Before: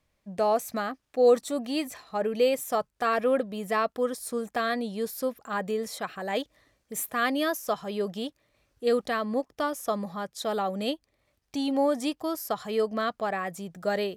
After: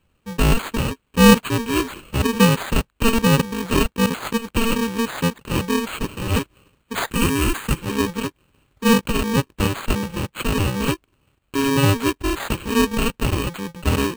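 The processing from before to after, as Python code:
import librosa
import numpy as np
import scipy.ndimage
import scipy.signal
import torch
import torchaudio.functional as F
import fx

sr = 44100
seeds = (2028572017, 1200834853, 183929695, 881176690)

y = fx.bit_reversed(x, sr, seeds[0], block=64)
y = np.repeat(y[::8], 8)[:len(y)]
y = fx.graphic_eq_15(y, sr, hz=(630, 4000, 10000), db=(-11, -4, 4), at=(7.1, 7.79))
y = y * librosa.db_to_amplitude(8.5)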